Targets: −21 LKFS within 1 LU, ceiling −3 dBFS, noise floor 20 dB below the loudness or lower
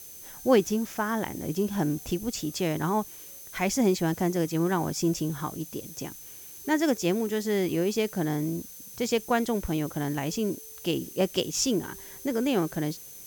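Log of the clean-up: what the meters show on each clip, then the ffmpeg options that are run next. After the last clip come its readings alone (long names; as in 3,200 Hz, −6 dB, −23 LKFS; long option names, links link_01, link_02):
interfering tone 6,200 Hz; level of the tone −50 dBFS; background noise floor −45 dBFS; target noise floor −48 dBFS; integrated loudness −28.0 LKFS; sample peak −8.5 dBFS; target loudness −21.0 LKFS
→ -af "bandreject=frequency=6200:width=30"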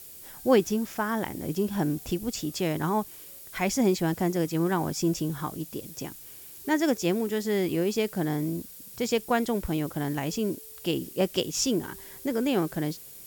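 interfering tone none found; background noise floor −46 dBFS; target noise floor −49 dBFS
→ -af "afftdn=noise_reduction=6:noise_floor=-46"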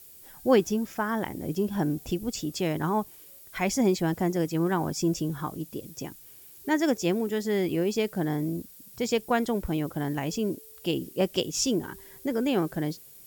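background noise floor −50 dBFS; integrated loudness −28.5 LKFS; sample peak −8.5 dBFS; target loudness −21.0 LKFS
→ -af "volume=7.5dB,alimiter=limit=-3dB:level=0:latency=1"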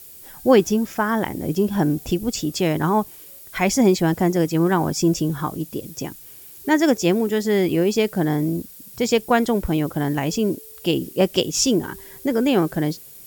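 integrated loudness −21.0 LKFS; sample peak −3.0 dBFS; background noise floor −43 dBFS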